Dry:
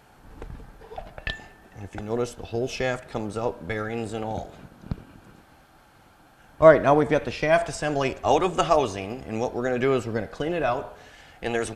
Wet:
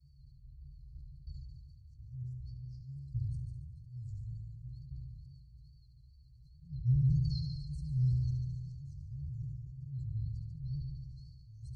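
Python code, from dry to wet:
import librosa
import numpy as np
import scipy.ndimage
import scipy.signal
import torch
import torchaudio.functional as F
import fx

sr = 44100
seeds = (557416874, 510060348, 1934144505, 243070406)

p1 = fx.octave_resonator(x, sr, note='C', decay_s=0.12)
p2 = fx.wow_flutter(p1, sr, seeds[0], rate_hz=2.1, depth_cents=140.0)
p3 = fx.auto_swell(p2, sr, attack_ms=349.0)
p4 = fx.env_phaser(p3, sr, low_hz=380.0, high_hz=3400.0, full_db=-30.5)
p5 = fx.brickwall_bandstop(p4, sr, low_hz=150.0, high_hz=4100.0)
p6 = p5 + fx.echo_heads(p5, sr, ms=72, heads='first and second', feedback_pct=64, wet_db=-11.0, dry=0)
p7 = fx.sustainer(p6, sr, db_per_s=28.0)
y = p7 * librosa.db_to_amplitude(7.0)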